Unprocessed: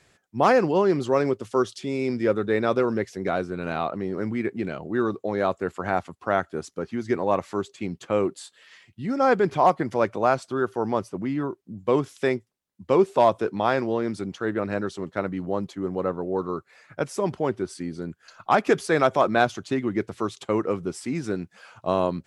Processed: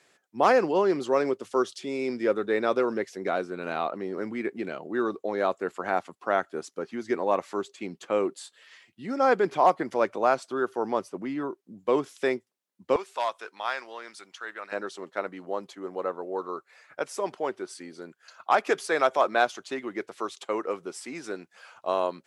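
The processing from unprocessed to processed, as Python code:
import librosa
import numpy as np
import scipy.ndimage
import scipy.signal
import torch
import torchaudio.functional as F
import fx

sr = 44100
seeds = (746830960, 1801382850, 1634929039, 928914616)

y = fx.highpass(x, sr, hz=fx.steps((0.0, 280.0), (12.96, 1200.0), (14.72, 460.0)), slope=12)
y = F.gain(torch.from_numpy(y), -1.5).numpy()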